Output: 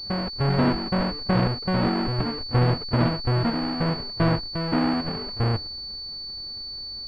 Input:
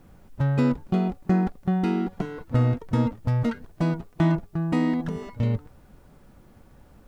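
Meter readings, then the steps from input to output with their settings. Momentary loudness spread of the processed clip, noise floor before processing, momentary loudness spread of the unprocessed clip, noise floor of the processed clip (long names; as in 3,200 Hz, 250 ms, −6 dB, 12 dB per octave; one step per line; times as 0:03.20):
10 LU, −53 dBFS, 5 LU, −35 dBFS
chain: each half-wave held at its own peak
parametric band 170 Hz −4.5 dB 0.63 octaves
on a send: backwards echo 1,192 ms −5.5 dB
on the sum: switching amplifier with a slow clock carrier 4,500 Hz
level −2.5 dB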